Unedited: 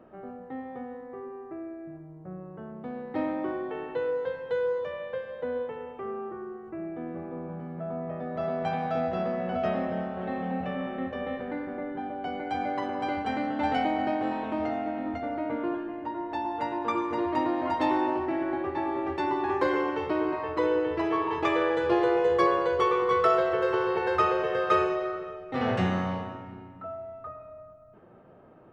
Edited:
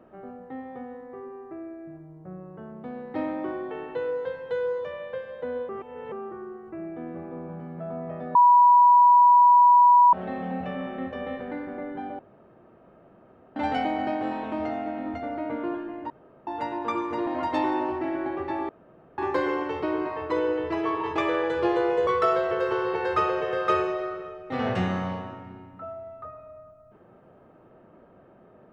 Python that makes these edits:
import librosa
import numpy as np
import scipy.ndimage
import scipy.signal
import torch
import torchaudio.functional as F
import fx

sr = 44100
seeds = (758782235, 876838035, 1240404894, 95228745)

y = fx.edit(x, sr, fx.reverse_span(start_s=5.69, length_s=0.43),
    fx.bleep(start_s=8.35, length_s=1.78, hz=975.0, db=-12.0),
    fx.room_tone_fill(start_s=12.19, length_s=1.37),
    fx.room_tone_fill(start_s=16.1, length_s=0.37),
    fx.cut(start_s=17.27, length_s=0.27),
    fx.room_tone_fill(start_s=18.96, length_s=0.49),
    fx.cut(start_s=22.34, length_s=0.75), tone=tone)